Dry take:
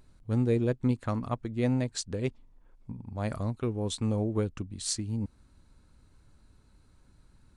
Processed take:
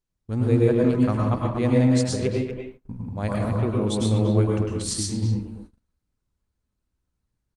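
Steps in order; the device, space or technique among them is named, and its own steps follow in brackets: speakerphone in a meeting room (reverberation RT60 0.50 s, pre-delay 97 ms, DRR -1.5 dB; speakerphone echo 240 ms, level -6 dB; level rider gain up to 4 dB; gate -41 dBFS, range -26 dB; Opus 32 kbps 48 kHz)

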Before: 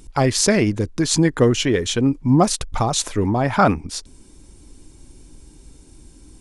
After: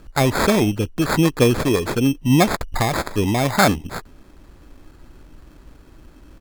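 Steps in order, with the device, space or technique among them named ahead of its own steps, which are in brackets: crushed at another speed (playback speed 0.8×; sample-and-hold 19×; playback speed 1.25×)

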